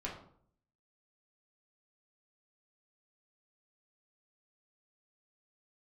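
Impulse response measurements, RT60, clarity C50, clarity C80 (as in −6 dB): 0.60 s, 6.5 dB, 10.0 dB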